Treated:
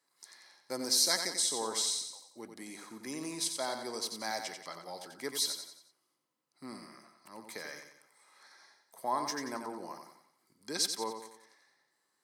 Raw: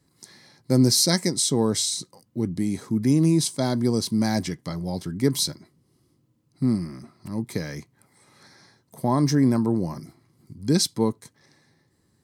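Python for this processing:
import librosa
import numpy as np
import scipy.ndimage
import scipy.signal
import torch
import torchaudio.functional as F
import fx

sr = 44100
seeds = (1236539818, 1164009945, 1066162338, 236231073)

p1 = scipy.signal.sosfilt(scipy.signal.butter(2, 670.0, 'highpass', fs=sr, output='sos'), x)
p2 = fx.peak_eq(p1, sr, hz=1200.0, db=3.5, octaves=1.9)
p3 = p2 + fx.echo_feedback(p2, sr, ms=90, feedback_pct=44, wet_db=-7.0, dry=0)
y = F.gain(torch.from_numpy(p3), -7.5).numpy()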